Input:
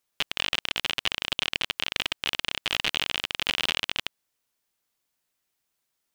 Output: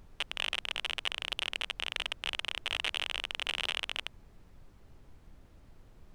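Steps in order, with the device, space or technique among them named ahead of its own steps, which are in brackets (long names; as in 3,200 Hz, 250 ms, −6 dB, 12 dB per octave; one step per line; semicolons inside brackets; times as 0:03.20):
aircraft cabin announcement (band-pass filter 390–4,000 Hz; soft clipping −14.5 dBFS, distortion −15 dB; brown noise bed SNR 14 dB)
level −3 dB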